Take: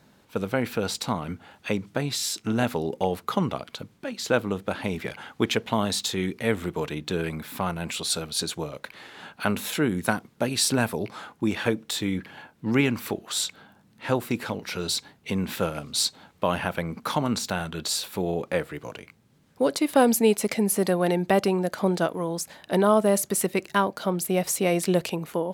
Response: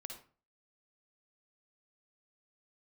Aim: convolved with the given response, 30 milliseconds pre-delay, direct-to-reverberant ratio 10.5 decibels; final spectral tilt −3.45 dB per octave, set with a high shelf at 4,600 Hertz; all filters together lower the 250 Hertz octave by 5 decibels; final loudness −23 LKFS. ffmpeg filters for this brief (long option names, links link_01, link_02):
-filter_complex "[0:a]equalizer=frequency=250:width_type=o:gain=-7,highshelf=frequency=4600:gain=5,asplit=2[link_01][link_02];[1:a]atrim=start_sample=2205,adelay=30[link_03];[link_02][link_03]afir=irnorm=-1:irlink=0,volume=-6.5dB[link_04];[link_01][link_04]amix=inputs=2:normalize=0,volume=3dB"